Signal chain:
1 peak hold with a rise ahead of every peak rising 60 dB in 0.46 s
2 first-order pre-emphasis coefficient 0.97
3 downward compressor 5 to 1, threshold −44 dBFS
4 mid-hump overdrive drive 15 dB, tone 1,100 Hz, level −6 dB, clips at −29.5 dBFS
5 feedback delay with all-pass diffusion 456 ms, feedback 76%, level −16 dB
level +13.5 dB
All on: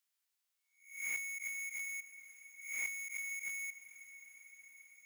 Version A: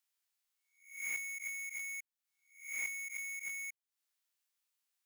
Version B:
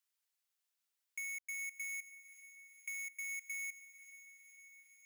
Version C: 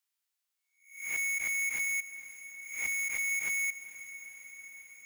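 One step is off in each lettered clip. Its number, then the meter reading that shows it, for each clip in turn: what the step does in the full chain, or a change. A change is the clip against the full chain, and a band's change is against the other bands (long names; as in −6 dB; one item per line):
5, echo-to-direct ratio −12.5 dB to none audible
1, change in integrated loudness −2.5 LU
3, average gain reduction 13.5 dB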